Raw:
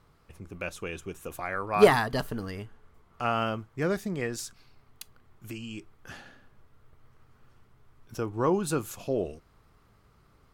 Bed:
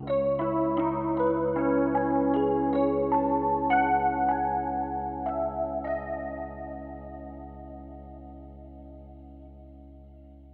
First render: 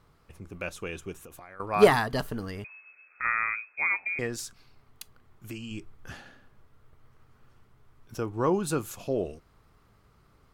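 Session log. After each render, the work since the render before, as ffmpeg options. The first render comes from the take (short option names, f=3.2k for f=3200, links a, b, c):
-filter_complex "[0:a]asettb=1/sr,asplit=3[a][b][c];[a]atrim=end=1.184[d];[b]atrim=start=1.18:end=1.6,asetpts=PTS-STARTPTS,afade=t=in:d=0.004:c=qsin,afade=t=out:st=0.416:d=0.004:c=qsin,acompressor=threshold=-44dB:ratio=6:attack=3.2:release=140:knee=1:detection=peak[e];[c]atrim=start=1.596[f];[d][e]acrossfade=d=0.004:c1=hsin:c2=qsin[g];[g][f]acrossfade=d=0.004:c1=qsin:c2=hsin,asettb=1/sr,asplit=3[h][i][j];[h]atrim=end=2.644[k];[i]atrim=start=2.64:end=4.19,asetpts=PTS-STARTPTS,afade=t=in:d=0.004:c=qsin,afade=t=out:st=1.546:d=0.004:c=qsin,lowpass=f=2.2k:t=q:w=0.5098,lowpass=f=2.2k:t=q:w=0.6013,lowpass=f=2.2k:t=q:w=0.9,lowpass=f=2.2k:t=q:w=2.563,afreqshift=-2600[l];[j]atrim=start=4.186[m];[k][l]acrossfade=d=0.004:c1=hsin:c2=qsin[n];[n][m]acrossfade=d=0.004:c1=qsin:c2=hsin,asettb=1/sr,asplit=3[o][p][q];[o]atrim=end=5.714[r];[p]atrim=start=5.71:end=6.15,asetpts=PTS-STARTPTS,afade=t=in:d=0.004:c=qsin,afade=t=out:st=0.436:d=0.004:c=qsin,lowshelf=f=130:g=8.5[s];[q]atrim=start=6.146[t];[r][s]acrossfade=d=0.004:c1=hsin:c2=qsin[u];[u][t]acrossfade=d=0.004:c1=qsin:c2=hsin"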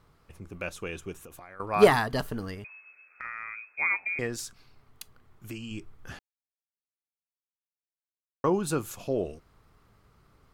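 -filter_complex "[0:a]asettb=1/sr,asplit=3[a][b][c];[a]atrim=end=2.544[d];[b]atrim=start=2.54:end=3.77,asetpts=PTS-STARTPTS,afade=t=in:d=0.004:c=qsin,afade=t=out:st=1.226:d=0.004:c=qsin,acompressor=threshold=-37dB:ratio=3:attack=3.2:release=140:knee=1:detection=peak[e];[c]atrim=start=3.766[f];[d][e]acrossfade=d=0.004:c1=hsin:c2=qsin[g];[g][f]acrossfade=d=0.004:c1=qsin:c2=hsin,asplit=3[h][i][j];[h]atrim=end=6.19,asetpts=PTS-STARTPTS,afade=t=out:st=6.186:d=0.004:c=hsin[k];[i]atrim=start=6.19:end=8.44,asetpts=PTS-STARTPTS,volume=0[l];[j]atrim=start=8.44,asetpts=PTS-STARTPTS,afade=t=in:d=0.004:c=hsin[m];[k][l][m]concat=n=3:v=0:a=1"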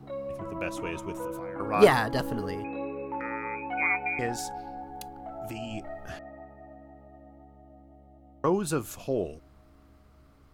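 -filter_complex "[1:a]volume=-10.5dB[a];[0:a][a]amix=inputs=2:normalize=0"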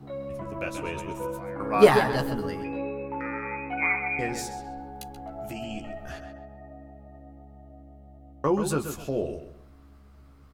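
-filter_complex "[0:a]asplit=2[a][b];[b]adelay=14,volume=-5.5dB[c];[a][c]amix=inputs=2:normalize=0,asplit=2[d][e];[e]adelay=131,lowpass=f=4.4k:p=1,volume=-8.5dB,asplit=2[f][g];[g]adelay=131,lowpass=f=4.4k:p=1,volume=0.29,asplit=2[h][i];[i]adelay=131,lowpass=f=4.4k:p=1,volume=0.29[j];[d][f][h][j]amix=inputs=4:normalize=0"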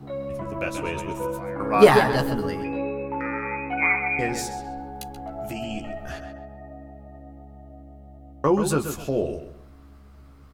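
-af "volume=4dB,alimiter=limit=-2dB:level=0:latency=1"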